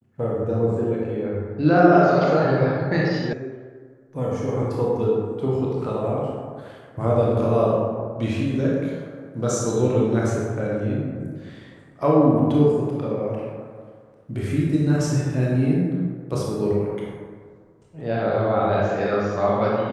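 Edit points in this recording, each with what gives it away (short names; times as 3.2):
3.33 sound cut off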